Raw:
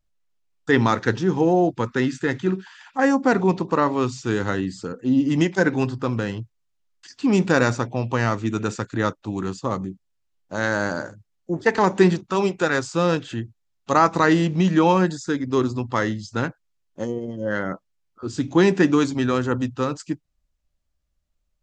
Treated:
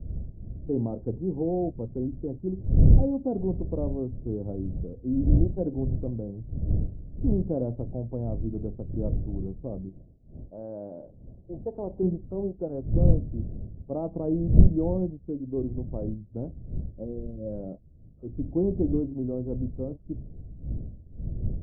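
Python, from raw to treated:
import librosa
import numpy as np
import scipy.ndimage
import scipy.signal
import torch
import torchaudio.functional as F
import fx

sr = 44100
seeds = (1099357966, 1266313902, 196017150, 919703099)

y = fx.dmg_wind(x, sr, seeds[0], corner_hz=100.0, level_db=-21.0)
y = fx.low_shelf(y, sr, hz=270.0, db=-11.0, at=(9.89, 12.03))
y = scipy.signal.sosfilt(scipy.signal.ellip(4, 1.0, 80, 650.0, 'lowpass', fs=sr, output='sos'), y)
y = fx.low_shelf(y, sr, hz=120.0, db=4.0)
y = y * 10.0 ** (-9.0 / 20.0)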